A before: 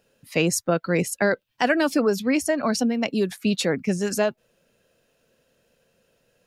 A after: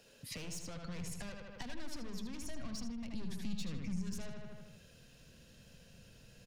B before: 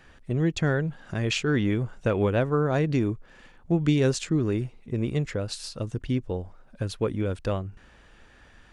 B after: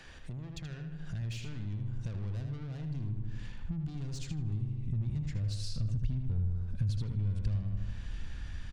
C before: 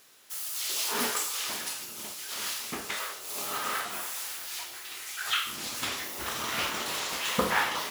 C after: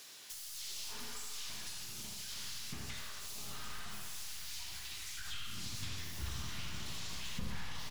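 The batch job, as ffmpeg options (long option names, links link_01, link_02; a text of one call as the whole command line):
ffmpeg -i in.wav -filter_complex "[0:a]aeval=exprs='(tanh(25.1*val(0)+0.2)-tanh(0.2))/25.1':channel_layout=same,bandreject=frequency=1300:width=21,asplit=2[link_01][link_02];[link_02]adelay=78,lowpass=frequency=4300:poles=1,volume=-5dB,asplit=2[link_03][link_04];[link_04]adelay=78,lowpass=frequency=4300:poles=1,volume=0.5,asplit=2[link_05][link_06];[link_06]adelay=78,lowpass=frequency=4300:poles=1,volume=0.5,asplit=2[link_07][link_08];[link_08]adelay=78,lowpass=frequency=4300:poles=1,volume=0.5,asplit=2[link_09][link_10];[link_10]adelay=78,lowpass=frequency=4300:poles=1,volume=0.5,asplit=2[link_11][link_12];[link_12]adelay=78,lowpass=frequency=4300:poles=1,volume=0.5[link_13];[link_03][link_05][link_07][link_09][link_11][link_13]amix=inputs=6:normalize=0[link_14];[link_01][link_14]amix=inputs=2:normalize=0,acompressor=threshold=-40dB:ratio=6,asubboost=boost=6.5:cutoff=180,acrossover=split=160[link_15][link_16];[link_16]acompressor=threshold=-56dB:ratio=2[link_17];[link_15][link_17]amix=inputs=2:normalize=0,equalizer=frequency=4900:width_type=o:width=1.8:gain=8,volume=1dB" out.wav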